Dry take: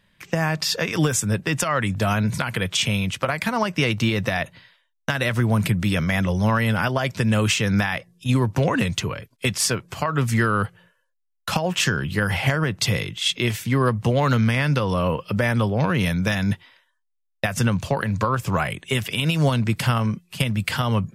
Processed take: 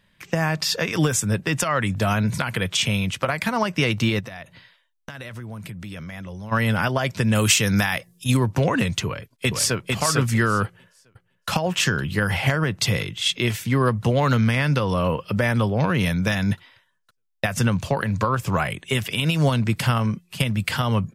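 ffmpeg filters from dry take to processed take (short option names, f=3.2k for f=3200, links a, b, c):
-filter_complex "[0:a]asplit=3[a][b][c];[a]afade=t=out:st=4.19:d=0.02[d];[b]acompressor=threshold=-35dB:ratio=4:attack=3.2:release=140:knee=1:detection=peak,afade=t=in:st=4.19:d=0.02,afade=t=out:st=6.51:d=0.02[e];[c]afade=t=in:st=6.51:d=0.02[f];[d][e][f]amix=inputs=3:normalize=0,asettb=1/sr,asplit=3[g][h][i];[g]atrim=end=7.354[j];[h]atrim=start=7.35:end=8.37,asetpts=PTS-STARTPTS,afade=t=in:d=0.004:c=qsin,afade=t=out:st=1.016:d=0.004:c=qsin,aemphasis=mode=production:type=50kf[k];[i]atrim=start=8.366[l];[j][k]acrossfade=d=0.004:c1=hsin:c2=qsin[m];[m][l]acrossfade=d=0.004:c1=qsin:c2=hsin,asplit=2[n][o];[o]afade=t=in:st=9.06:d=0.01,afade=t=out:st=9.82:d=0.01,aecho=0:1:450|900|1350:0.749894|0.112484|0.0168726[p];[n][p]amix=inputs=2:normalize=0,asplit=2[q][r];[r]afade=t=in:st=10.64:d=0.01,afade=t=out:st=11.49:d=0.01,aecho=0:1:510|1020|1530|2040|2550|3060|3570|4080|4590|5100|5610|6120:0.141254|0.120066|0.102056|0.0867475|0.0737353|0.062675|0.0532738|0.0452827|0.0384903|0.0327168|0.0278092|0.0236379[s];[q][s]amix=inputs=2:normalize=0"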